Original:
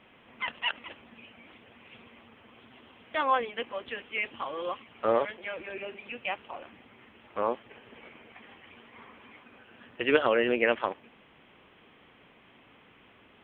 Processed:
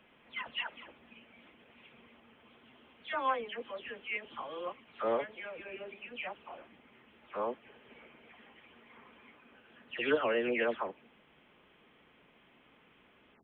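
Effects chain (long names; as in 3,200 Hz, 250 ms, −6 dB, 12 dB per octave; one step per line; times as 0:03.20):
every frequency bin delayed by itself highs early, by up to 220 ms
level −5.5 dB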